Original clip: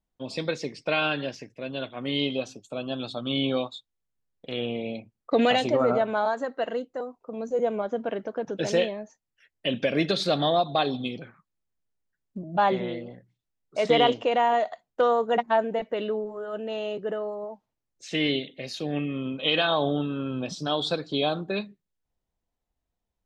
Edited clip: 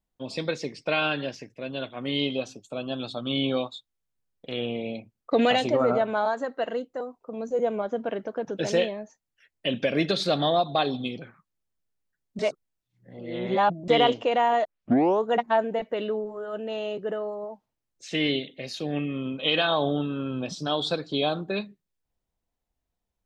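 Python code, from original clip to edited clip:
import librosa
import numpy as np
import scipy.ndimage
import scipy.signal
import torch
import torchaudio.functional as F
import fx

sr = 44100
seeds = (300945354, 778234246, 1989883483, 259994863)

y = fx.edit(x, sr, fx.reverse_span(start_s=12.39, length_s=1.49),
    fx.tape_start(start_s=14.65, length_s=0.58), tone=tone)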